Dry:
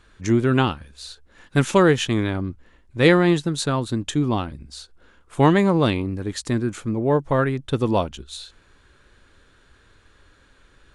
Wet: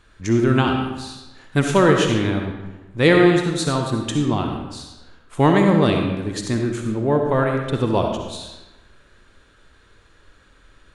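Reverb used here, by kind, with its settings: digital reverb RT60 1.1 s, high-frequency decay 0.75×, pre-delay 25 ms, DRR 2.5 dB

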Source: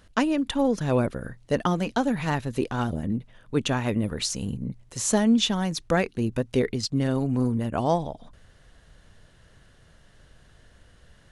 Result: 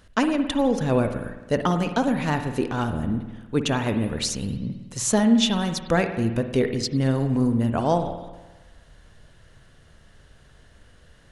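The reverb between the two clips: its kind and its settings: spring tank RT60 1.2 s, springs 52 ms, chirp 50 ms, DRR 7.5 dB; gain +1.5 dB

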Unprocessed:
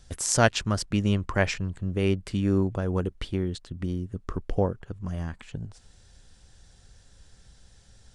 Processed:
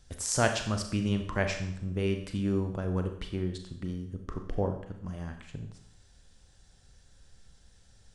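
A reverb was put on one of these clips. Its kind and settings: Schroeder reverb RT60 0.68 s, combs from 29 ms, DRR 5.5 dB; gain -5.5 dB

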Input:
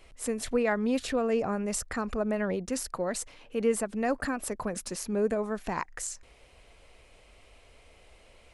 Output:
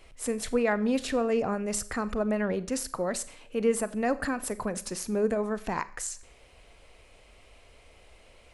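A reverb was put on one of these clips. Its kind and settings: Schroeder reverb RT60 0.47 s, combs from 30 ms, DRR 15 dB; gain +1 dB

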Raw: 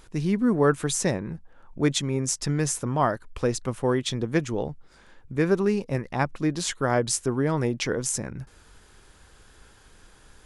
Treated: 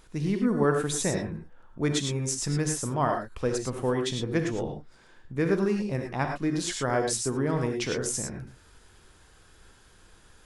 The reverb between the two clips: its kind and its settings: non-linear reverb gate 0.13 s rising, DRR 3.5 dB; gain -4 dB

